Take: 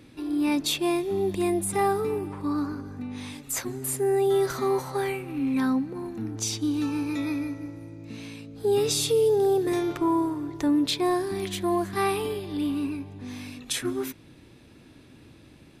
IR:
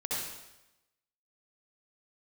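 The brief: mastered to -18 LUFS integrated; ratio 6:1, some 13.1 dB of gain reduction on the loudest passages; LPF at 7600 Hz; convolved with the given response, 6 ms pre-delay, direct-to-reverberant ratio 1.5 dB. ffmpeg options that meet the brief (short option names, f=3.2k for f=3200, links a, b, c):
-filter_complex "[0:a]lowpass=7.6k,acompressor=threshold=-34dB:ratio=6,asplit=2[a][b];[1:a]atrim=start_sample=2205,adelay=6[c];[b][c]afir=irnorm=-1:irlink=0,volume=-6.5dB[d];[a][d]amix=inputs=2:normalize=0,volume=17dB"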